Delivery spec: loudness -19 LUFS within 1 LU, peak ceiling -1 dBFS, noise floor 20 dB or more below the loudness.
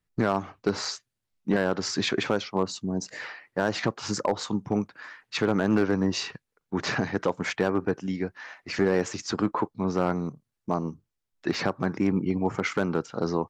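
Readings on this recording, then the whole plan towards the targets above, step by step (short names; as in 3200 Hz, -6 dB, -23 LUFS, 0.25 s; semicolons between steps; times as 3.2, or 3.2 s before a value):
clipped 0.4%; flat tops at -14.5 dBFS; dropouts 2; longest dropout 2.2 ms; loudness -28.0 LUFS; peak -14.5 dBFS; loudness target -19.0 LUFS
-> clip repair -14.5 dBFS; interpolate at 0.85/11.54, 2.2 ms; gain +9 dB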